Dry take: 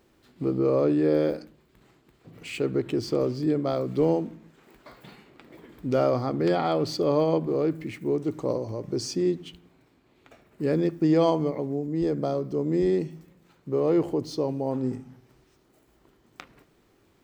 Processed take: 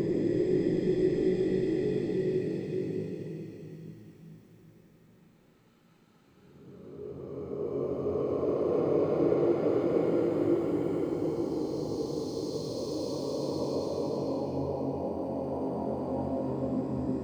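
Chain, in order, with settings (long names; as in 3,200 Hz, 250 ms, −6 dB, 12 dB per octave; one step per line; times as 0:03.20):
amplitude modulation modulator 49 Hz, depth 100%
extreme stretch with random phases 8.1×, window 0.50 s, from 0:12.72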